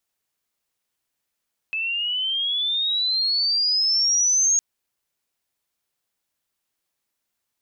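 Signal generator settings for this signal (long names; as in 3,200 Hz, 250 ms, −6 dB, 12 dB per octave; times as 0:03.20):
glide logarithmic 2,600 Hz → 6,600 Hz −23 dBFS → −15.5 dBFS 2.86 s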